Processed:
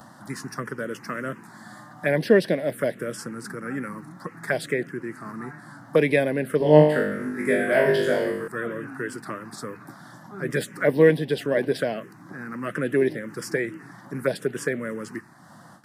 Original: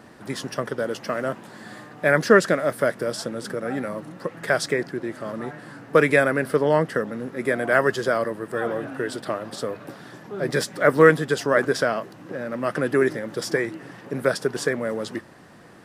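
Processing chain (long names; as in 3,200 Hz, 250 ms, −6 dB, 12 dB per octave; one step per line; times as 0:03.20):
high-pass filter 110 Hz 24 dB per octave
noise gate with hold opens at −39 dBFS
upward compression, threshold −37 dBFS
phaser swept by the level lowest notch 390 Hz, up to 1,300 Hz, full sweep at −17 dBFS
0:06.58–0:08.48: flutter between parallel walls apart 3.4 metres, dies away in 0.68 s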